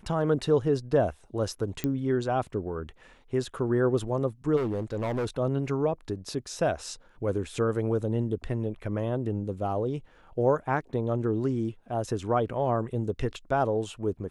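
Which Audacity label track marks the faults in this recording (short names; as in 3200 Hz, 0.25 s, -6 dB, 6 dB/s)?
1.840000	1.840000	pop -15 dBFS
4.560000	5.270000	clipped -25.5 dBFS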